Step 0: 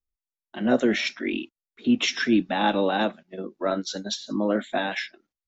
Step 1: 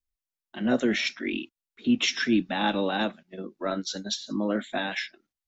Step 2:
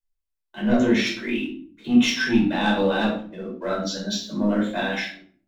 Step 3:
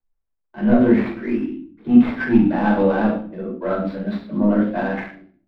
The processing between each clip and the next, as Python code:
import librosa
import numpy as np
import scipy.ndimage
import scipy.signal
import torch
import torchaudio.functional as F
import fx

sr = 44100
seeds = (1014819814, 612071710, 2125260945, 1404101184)

y1 = fx.peak_eq(x, sr, hz=610.0, db=-5.0, octaves=2.3)
y2 = fx.leveller(y1, sr, passes=1)
y2 = fx.room_shoebox(y2, sr, seeds[0], volume_m3=520.0, walls='furnished', distance_m=5.0)
y2 = y2 * 10.0 ** (-7.0 / 20.0)
y3 = scipy.signal.medfilt(y2, 15)
y3 = fx.air_absorb(y3, sr, metres=450.0)
y3 = y3 * 10.0 ** (5.5 / 20.0)